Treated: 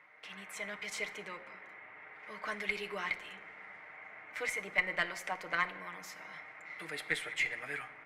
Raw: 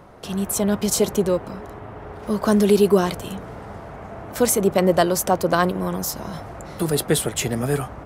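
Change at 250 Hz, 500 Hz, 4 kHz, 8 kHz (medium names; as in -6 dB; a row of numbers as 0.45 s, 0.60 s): -30.5 dB, -25.5 dB, -13.5 dB, -24.0 dB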